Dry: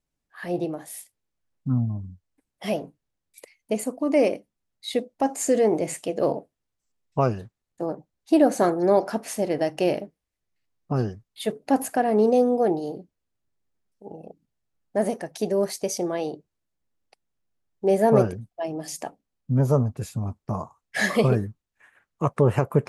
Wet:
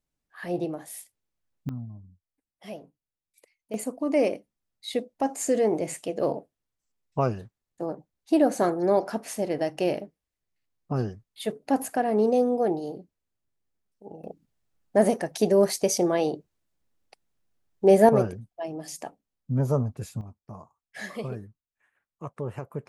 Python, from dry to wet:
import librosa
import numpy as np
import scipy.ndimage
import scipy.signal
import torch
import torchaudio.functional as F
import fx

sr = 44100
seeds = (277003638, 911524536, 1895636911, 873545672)

y = fx.gain(x, sr, db=fx.steps((0.0, -2.0), (1.69, -13.0), (3.74, -3.0), (14.24, 3.5), (18.09, -4.0), (20.21, -14.0)))